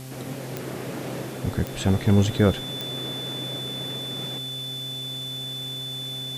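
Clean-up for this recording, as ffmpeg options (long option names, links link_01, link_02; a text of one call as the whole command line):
ffmpeg -i in.wav -af "adeclick=threshold=4,bandreject=frequency=130.7:width_type=h:width=4,bandreject=frequency=261.4:width_type=h:width=4,bandreject=frequency=392.1:width_type=h:width=4,bandreject=frequency=522.8:width_type=h:width=4,bandreject=frequency=653.5:width_type=h:width=4,bandreject=frequency=784.2:width_type=h:width=4,bandreject=frequency=3500:width=30,afwtdn=0.0056" out.wav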